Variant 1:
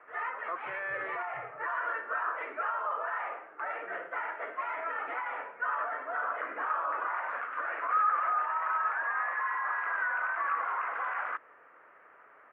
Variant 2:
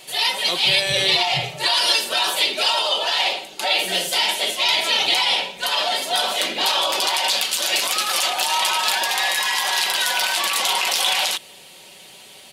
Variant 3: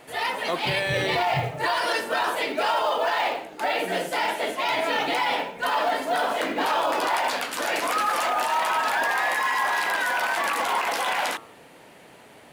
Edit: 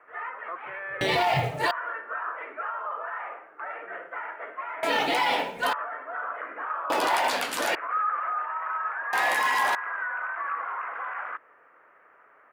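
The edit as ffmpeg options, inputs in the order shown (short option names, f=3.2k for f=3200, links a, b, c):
-filter_complex "[2:a]asplit=4[a][b][c][d];[0:a]asplit=5[e][f][g][h][i];[e]atrim=end=1.012[j];[a]atrim=start=1.008:end=1.712[k];[f]atrim=start=1.708:end=4.832[l];[b]atrim=start=4.828:end=5.732[m];[g]atrim=start=5.728:end=6.902[n];[c]atrim=start=6.898:end=7.752[o];[h]atrim=start=7.748:end=9.132[p];[d]atrim=start=9.128:end=9.752[q];[i]atrim=start=9.748[r];[j][k]acrossfade=d=0.004:c1=hsin:c2=hsin[s];[s][l]acrossfade=d=0.004:c1=hsin:c2=hsin[t];[t][m]acrossfade=d=0.004:c1=hsin:c2=hsin[u];[u][n]acrossfade=d=0.004:c1=hsin:c2=hsin[v];[v][o]acrossfade=d=0.004:c1=hsin:c2=hsin[w];[w][p]acrossfade=d=0.004:c1=hsin:c2=hsin[x];[x][q]acrossfade=d=0.004:c1=hsin:c2=hsin[y];[y][r]acrossfade=d=0.004:c1=hsin:c2=hsin"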